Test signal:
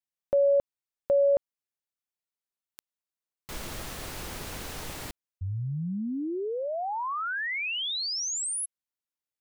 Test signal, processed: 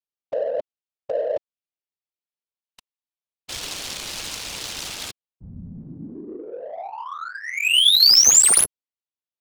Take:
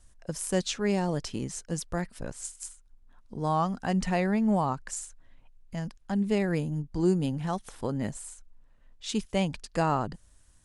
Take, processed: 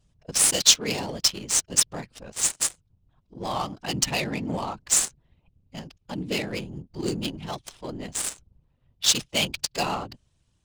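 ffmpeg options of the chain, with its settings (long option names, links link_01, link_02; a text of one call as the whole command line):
ffmpeg -i in.wav -af "aexciter=amount=10.4:drive=2.4:freq=2500,afftfilt=real='hypot(re,im)*cos(2*PI*random(0))':imag='hypot(re,im)*sin(2*PI*random(1))':win_size=512:overlap=0.75,lowshelf=frequency=260:gain=-6.5,adynamicsmooth=sensitivity=6:basefreq=1200,volume=5dB" out.wav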